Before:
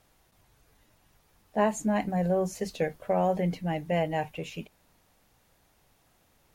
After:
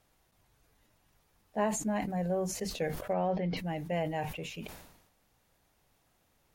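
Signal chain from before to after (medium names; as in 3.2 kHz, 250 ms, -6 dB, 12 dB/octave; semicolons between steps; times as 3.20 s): 3.13–3.57 s: steep low-pass 5.4 kHz 48 dB/octave; decay stretcher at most 62 dB/s; trim -5.5 dB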